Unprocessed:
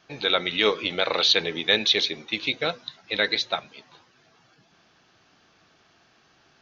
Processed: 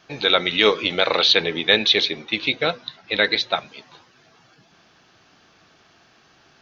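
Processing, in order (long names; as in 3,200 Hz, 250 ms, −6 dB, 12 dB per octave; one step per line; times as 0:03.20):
0:01.17–0:03.56: low-pass filter 4,700 Hz 12 dB per octave
level +5 dB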